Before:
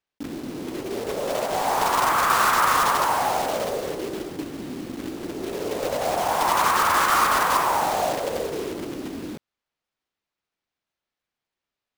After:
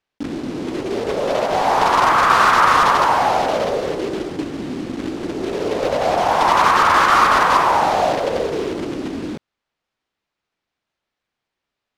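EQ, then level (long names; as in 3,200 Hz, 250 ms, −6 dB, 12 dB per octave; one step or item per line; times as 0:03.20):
dynamic equaliser 8,200 Hz, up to −5 dB, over −45 dBFS, Q 1.4
high-frequency loss of the air 67 metres
+7.0 dB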